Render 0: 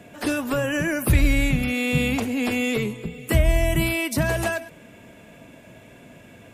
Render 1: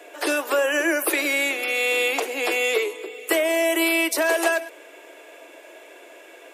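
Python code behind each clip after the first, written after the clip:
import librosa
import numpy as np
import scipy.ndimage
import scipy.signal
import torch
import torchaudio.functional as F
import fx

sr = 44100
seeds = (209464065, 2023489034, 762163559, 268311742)

y = scipy.signal.sosfilt(scipy.signal.butter(12, 320.0, 'highpass', fs=sr, output='sos'), x)
y = y * librosa.db_to_amplitude(4.5)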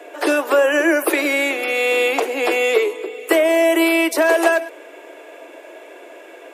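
y = fx.high_shelf(x, sr, hz=2100.0, db=-9.0)
y = y * librosa.db_to_amplitude(7.5)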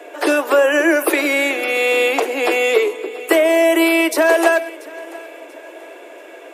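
y = fx.echo_feedback(x, sr, ms=686, feedback_pct=38, wet_db=-21.0)
y = y * librosa.db_to_amplitude(1.5)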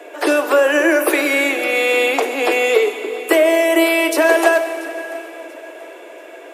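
y = fx.rev_plate(x, sr, seeds[0], rt60_s=3.2, hf_ratio=0.9, predelay_ms=0, drr_db=8.5)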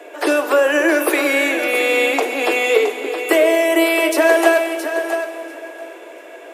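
y = x + 10.0 ** (-9.0 / 20.0) * np.pad(x, (int(668 * sr / 1000.0), 0))[:len(x)]
y = y * librosa.db_to_amplitude(-1.0)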